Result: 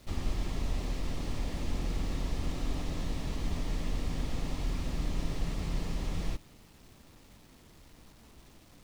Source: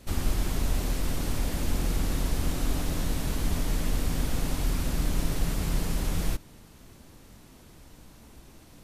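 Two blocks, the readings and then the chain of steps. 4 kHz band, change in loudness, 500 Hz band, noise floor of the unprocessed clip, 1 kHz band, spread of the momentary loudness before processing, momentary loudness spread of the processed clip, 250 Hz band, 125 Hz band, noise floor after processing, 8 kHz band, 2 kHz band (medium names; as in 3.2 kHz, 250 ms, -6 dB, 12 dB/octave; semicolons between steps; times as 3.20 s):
-6.5 dB, -6.0 dB, -5.5 dB, -52 dBFS, -6.0 dB, 1 LU, 2 LU, -5.5 dB, -5.5 dB, -57 dBFS, -12.0 dB, -7.0 dB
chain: low-pass 5.7 kHz 12 dB/octave; band-stop 1.5 kHz, Q 7.1; bit crusher 9-bit; trim -5.5 dB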